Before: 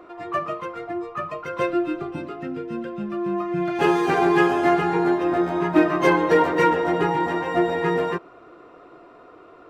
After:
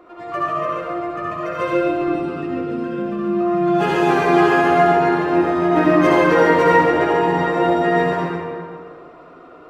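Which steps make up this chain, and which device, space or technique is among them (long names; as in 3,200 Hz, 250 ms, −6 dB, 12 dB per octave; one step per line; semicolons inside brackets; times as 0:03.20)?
tunnel (flutter between parallel walls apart 11.3 metres, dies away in 0.32 s; convolution reverb RT60 2.0 s, pre-delay 60 ms, DRR −5 dB)
level −2 dB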